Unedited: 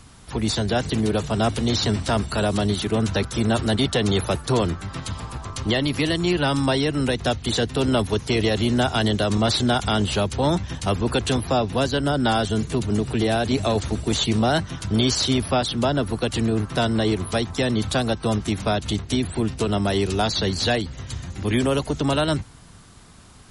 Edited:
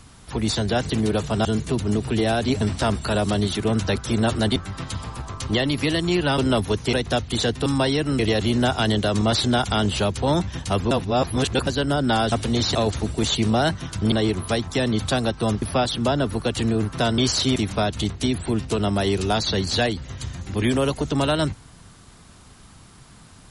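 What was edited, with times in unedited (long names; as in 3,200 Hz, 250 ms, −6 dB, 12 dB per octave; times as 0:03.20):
0:01.45–0:01.88: swap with 0:12.48–0:13.64
0:03.83–0:04.72: remove
0:06.54–0:07.07: swap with 0:07.80–0:08.35
0:11.07–0:11.83: reverse
0:15.01–0:15.39: swap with 0:16.95–0:18.45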